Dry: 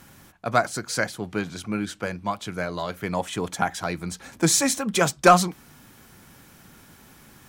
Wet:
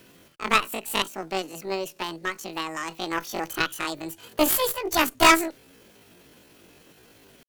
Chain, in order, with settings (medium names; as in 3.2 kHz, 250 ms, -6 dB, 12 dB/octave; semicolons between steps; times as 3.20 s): bit crusher 10-bit; Chebyshev shaper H 2 -23 dB, 3 -37 dB, 4 -10 dB, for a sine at -3.5 dBFS; pitch shift +10.5 st; trim -2 dB